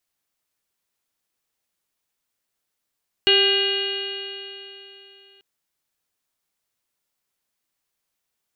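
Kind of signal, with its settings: stretched partials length 2.14 s, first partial 392 Hz, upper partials -13/-19/-7/-10.5/-9/5/-9/-11.5/-5.5 dB, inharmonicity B 0.0018, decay 3.24 s, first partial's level -19 dB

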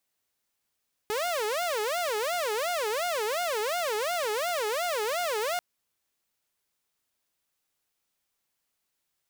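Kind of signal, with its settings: siren wail 418–715 Hz 2.8 per s saw -24.5 dBFS 4.49 s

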